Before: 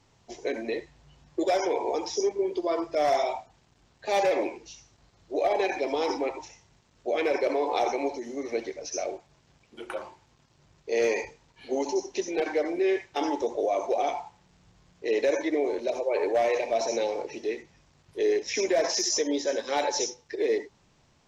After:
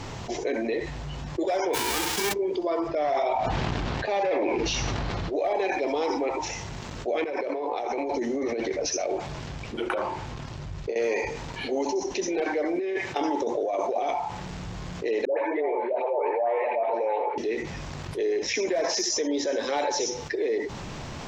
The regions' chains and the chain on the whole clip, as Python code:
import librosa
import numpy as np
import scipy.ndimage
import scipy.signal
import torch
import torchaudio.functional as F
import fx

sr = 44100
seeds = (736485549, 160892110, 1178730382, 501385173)

y = fx.envelope_flatten(x, sr, power=0.1, at=(1.73, 2.32), fade=0.02)
y = fx.sustainer(y, sr, db_per_s=41.0, at=(1.73, 2.32), fade=0.02)
y = fx.chain(y, sr, fx.lowpass(hz=4200.0, slope=12),
    fx.sustainer(db_per_s=22.0), at=(2.88, 5.33))
y = fx.chain(y, sr, fx.high_shelf(hz=6700.0, db=-6.5),
    fx.over_compress(threshold_db=-35.0, ratio=-1.0),
    fx.band_widen(depth_pct=40), at=(7.24, 10.96))
y = fx.chain(y, sr, fx.highpass(hz=91.0, slope=12),
    fx.over_compress(threshold_db=-28.0, ratio=-0.5), at=(12.73, 14.11))
y = fx.chain(y, sr, fx.cabinet(low_hz=310.0, low_slope=24, high_hz=2400.0, hz=(330.0, 890.0, 1500.0), db=(-6, 10, -4)),
    fx.dispersion(late='highs', ms=130.0, hz=830.0), at=(15.25, 17.38))
y = fx.high_shelf(y, sr, hz=4500.0, db=-7.5)
y = fx.env_flatten(y, sr, amount_pct=70)
y = y * librosa.db_to_amplitude(-3.5)